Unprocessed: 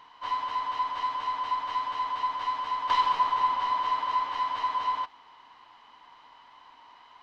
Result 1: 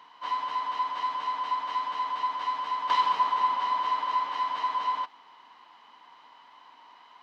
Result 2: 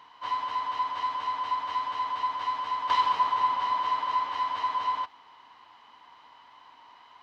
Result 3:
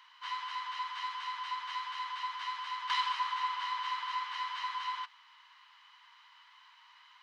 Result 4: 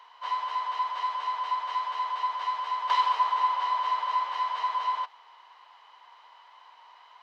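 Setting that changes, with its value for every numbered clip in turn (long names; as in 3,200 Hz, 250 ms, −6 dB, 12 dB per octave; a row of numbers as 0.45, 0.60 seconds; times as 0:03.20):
high-pass filter, corner frequency: 150, 53, 1,300, 480 Hertz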